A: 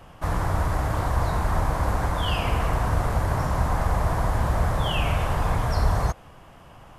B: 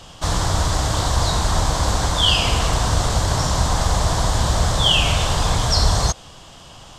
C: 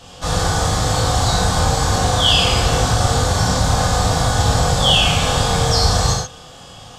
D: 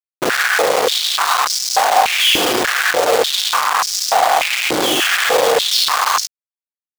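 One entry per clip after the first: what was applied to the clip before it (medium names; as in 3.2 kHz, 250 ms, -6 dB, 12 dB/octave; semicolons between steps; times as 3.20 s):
high-order bell 5.1 kHz +16 dB; trim +4 dB
reverberation, pre-delay 3 ms, DRR -5.5 dB; trim -3 dB
Schmitt trigger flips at -25.5 dBFS; step-sequenced high-pass 3.4 Hz 330–5300 Hz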